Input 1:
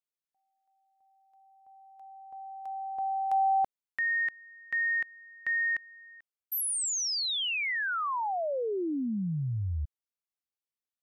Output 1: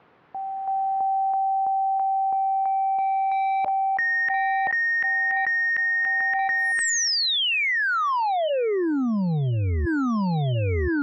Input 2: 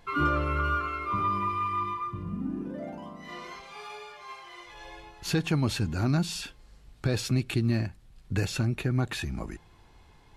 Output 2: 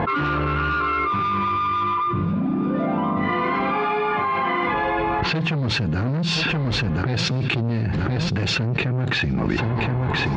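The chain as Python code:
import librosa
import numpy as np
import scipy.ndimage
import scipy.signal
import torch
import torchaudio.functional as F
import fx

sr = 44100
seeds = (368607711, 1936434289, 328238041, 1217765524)

p1 = fx.notch(x, sr, hz=600.0, q=13.0)
p2 = fx.env_lowpass(p1, sr, base_hz=1300.0, full_db=-24.0)
p3 = fx.dynamic_eq(p2, sr, hz=150.0, q=1.9, threshold_db=-43.0, ratio=4.0, max_db=5)
p4 = fx.rider(p3, sr, range_db=4, speed_s=2.0)
p5 = p3 + (p4 * librosa.db_to_amplitude(2.0))
p6 = 10.0 ** (-20.5 / 20.0) * np.tanh(p5 / 10.0 ** (-20.5 / 20.0))
p7 = fx.bandpass_edges(p6, sr, low_hz=100.0, high_hz=4300.0)
p8 = fx.air_absorb(p7, sr, metres=96.0)
p9 = p8 + fx.echo_feedback(p8, sr, ms=1025, feedback_pct=41, wet_db=-18, dry=0)
y = fx.env_flatten(p9, sr, amount_pct=100)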